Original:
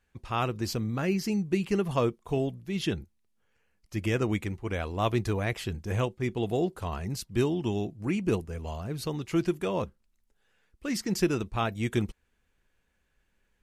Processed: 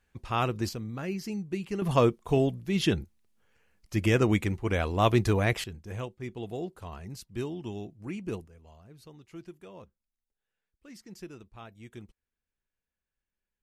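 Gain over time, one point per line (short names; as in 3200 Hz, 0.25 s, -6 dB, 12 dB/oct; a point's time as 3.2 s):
+1 dB
from 0.69 s -6 dB
from 1.82 s +4 dB
from 5.64 s -8 dB
from 8.48 s -18 dB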